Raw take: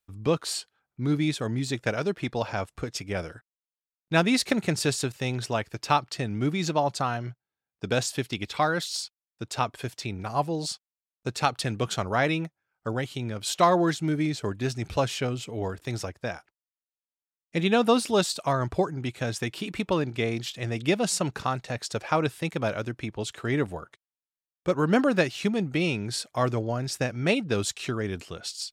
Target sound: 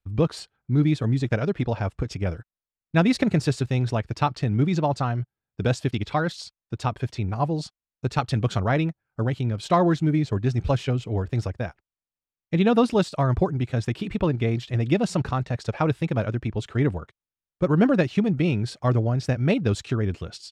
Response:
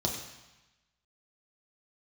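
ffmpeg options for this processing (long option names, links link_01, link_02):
-af "aemphasis=mode=reproduction:type=bsi,atempo=1.4"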